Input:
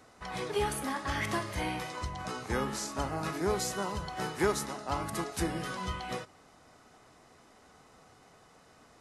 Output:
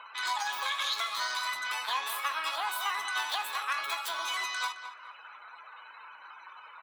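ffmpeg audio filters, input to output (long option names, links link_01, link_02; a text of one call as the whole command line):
ffmpeg -i in.wav -filter_complex "[0:a]afftdn=noise_reduction=33:noise_floor=-56,acompressor=mode=upward:threshold=-46dB:ratio=2.5,adynamicequalizer=threshold=0.00224:dfrequency=2900:dqfactor=0.99:tfrequency=2900:tqfactor=0.99:attack=5:release=100:ratio=0.375:range=2.5:mode=boostabove:tftype=bell,acompressor=threshold=-33dB:ratio=10,equalizer=frequency=1800:width_type=o:width=0.53:gain=8.5,atempo=0.66,highpass=frequency=540:width_type=q:width=4.9,asplit=2[link_01][link_02];[link_02]adelay=43,volume=-12dB[link_03];[link_01][link_03]amix=inputs=2:normalize=0,asplit=2[link_04][link_05];[link_05]adelay=430,lowpass=frequency=1200:poles=1,volume=-9dB,asplit=2[link_06][link_07];[link_07]adelay=430,lowpass=frequency=1200:poles=1,volume=0.37,asplit=2[link_08][link_09];[link_09]adelay=430,lowpass=frequency=1200:poles=1,volume=0.37,asplit=2[link_10][link_11];[link_11]adelay=430,lowpass=frequency=1200:poles=1,volume=0.37[link_12];[link_04][link_06][link_08][link_10][link_12]amix=inputs=5:normalize=0,asetrate=88200,aresample=44100" out.wav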